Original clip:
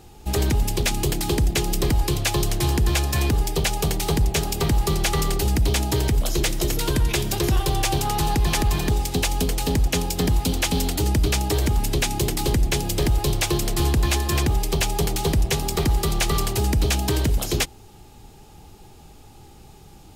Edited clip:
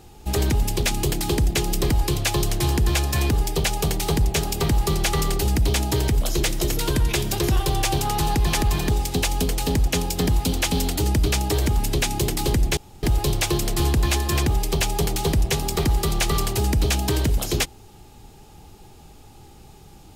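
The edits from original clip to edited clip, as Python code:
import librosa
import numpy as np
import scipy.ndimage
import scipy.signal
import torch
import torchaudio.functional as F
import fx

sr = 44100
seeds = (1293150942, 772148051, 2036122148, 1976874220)

y = fx.edit(x, sr, fx.room_tone_fill(start_s=12.77, length_s=0.26), tone=tone)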